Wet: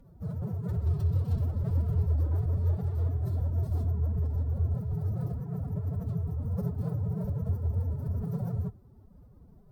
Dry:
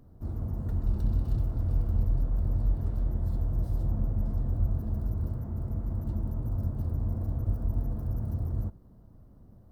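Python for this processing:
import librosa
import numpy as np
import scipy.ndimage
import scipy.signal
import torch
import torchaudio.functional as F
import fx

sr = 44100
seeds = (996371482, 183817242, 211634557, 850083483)

y = fx.pitch_keep_formants(x, sr, semitones=12.0)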